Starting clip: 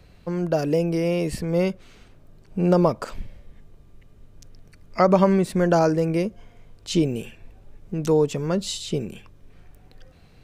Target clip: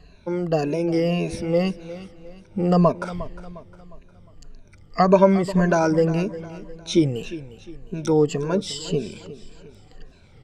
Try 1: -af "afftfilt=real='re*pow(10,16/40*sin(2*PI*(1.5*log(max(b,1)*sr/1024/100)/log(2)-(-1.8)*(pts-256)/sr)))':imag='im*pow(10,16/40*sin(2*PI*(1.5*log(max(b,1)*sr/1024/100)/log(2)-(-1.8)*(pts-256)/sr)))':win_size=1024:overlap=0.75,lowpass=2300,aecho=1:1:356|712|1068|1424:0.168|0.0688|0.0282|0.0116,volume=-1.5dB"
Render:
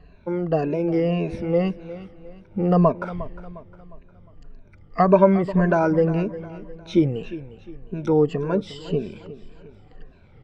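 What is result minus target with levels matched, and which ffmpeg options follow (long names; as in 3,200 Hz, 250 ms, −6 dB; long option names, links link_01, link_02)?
8,000 Hz band −17.5 dB
-af "afftfilt=real='re*pow(10,16/40*sin(2*PI*(1.5*log(max(b,1)*sr/1024/100)/log(2)-(-1.8)*(pts-256)/sr)))':imag='im*pow(10,16/40*sin(2*PI*(1.5*log(max(b,1)*sr/1024/100)/log(2)-(-1.8)*(pts-256)/sr)))':win_size=1024:overlap=0.75,lowpass=7400,aecho=1:1:356|712|1068|1424:0.168|0.0688|0.0282|0.0116,volume=-1.5dB"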